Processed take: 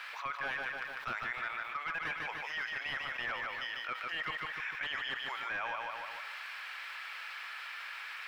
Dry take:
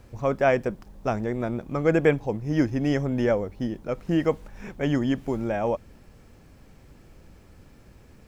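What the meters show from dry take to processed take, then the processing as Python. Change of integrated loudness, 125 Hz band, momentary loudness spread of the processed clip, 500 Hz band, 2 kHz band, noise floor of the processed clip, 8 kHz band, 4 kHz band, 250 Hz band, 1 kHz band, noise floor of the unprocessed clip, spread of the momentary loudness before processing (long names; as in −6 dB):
−12.0 dB, −29.5 dB, 6 LU, −25.5 dB, +1.0 dB, −45 dBFS, can't be measured, +3.5 dB, −32.0 dB, −5.5 dB, −53 dBFS, 10 LU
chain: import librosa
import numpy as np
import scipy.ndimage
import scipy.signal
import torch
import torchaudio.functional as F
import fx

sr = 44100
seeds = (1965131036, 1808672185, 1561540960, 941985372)

y = scipy.signal.sosfilt(scipy.signal.butter(4, 1300.0, 'highpass', fs=sr, output='sos'), x)
y = fx.high_shelf(y, sr, hz=2300.0, db=11.5)
y = fx.rider(y, sr, range_db=3, speed_s=0.5)
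y = 10.0 ** (-26.5 / 20.0) * (np.abs((y / 10.0 ** (-26.5 / 20.0) + 3.0) % 4.0 - 2.0) - 1.0)
y = fx.air_absorb(y, sr, metres=450.0)
y = fx.echo_feedback(y, sr, ms=149, feedback_pct=37, wet_db=-7)
y = fx.env_flatten(y, sr, amount_pct=70)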